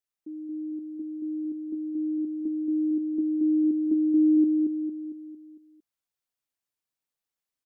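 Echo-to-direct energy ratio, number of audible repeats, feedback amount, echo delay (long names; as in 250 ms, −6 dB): −2.0 dB, 6, 49%, 227 ms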